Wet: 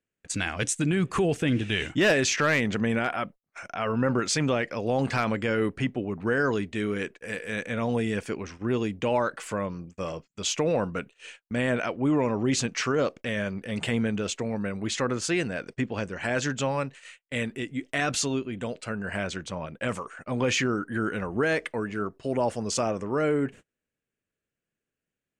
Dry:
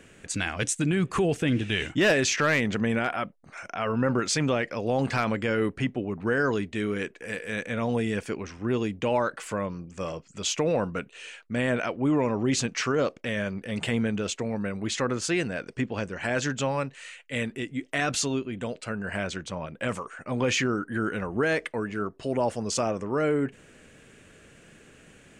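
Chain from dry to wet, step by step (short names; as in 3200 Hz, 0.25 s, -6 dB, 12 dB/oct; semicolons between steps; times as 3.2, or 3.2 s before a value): gate -42 dBFS, range -36 dB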